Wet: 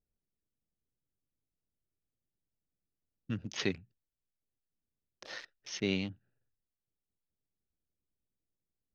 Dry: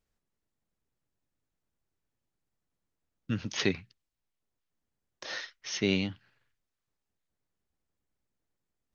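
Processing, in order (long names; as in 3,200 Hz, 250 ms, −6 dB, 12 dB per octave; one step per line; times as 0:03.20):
adaptive Wiener filter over 41 samples
level −4.5 dB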